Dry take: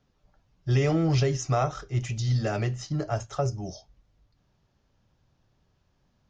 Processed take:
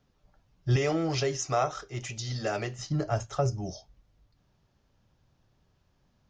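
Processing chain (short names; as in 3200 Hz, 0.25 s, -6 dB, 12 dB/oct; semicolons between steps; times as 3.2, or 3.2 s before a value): 0.76–2.79 tone controls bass -11 dB, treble +2 dB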